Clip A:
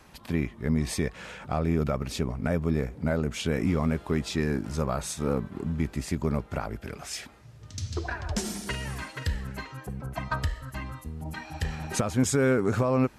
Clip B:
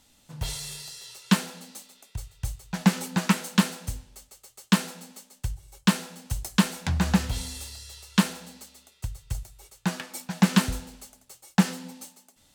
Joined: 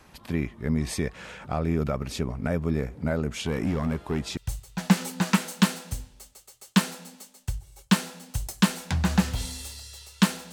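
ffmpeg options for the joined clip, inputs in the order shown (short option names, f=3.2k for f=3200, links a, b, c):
-filter_complex "[0:a]asettb=1/sr,asplit=3[a][b][c];[a]atrim=end=3.454[d];[b]atrim=start=3.45:end=4.37,asetpts=PTS-STARTPTS,afade=t=in:d=0.004:c=qsin,afade=t=out:st=0.916:d=0.004:c=qsin,asoftclip=type=hard:threshold=-20.5dB[e];[c]atrim=start=4.366[f];[d][e]acrossfade=d=0.004:c1=hsin:c2=qsin[g];[g][f]acrossfade=d=0.004:c1=qsin:c2=hsin,apad=whole_dur=10.52,atrim=end=10.52,atrim=end=4.372[h];[1:a]atrim=start=2.328:end=8.48[i];[h][i]acrossfade=d=0.004:c1=hsin:c2=hsin"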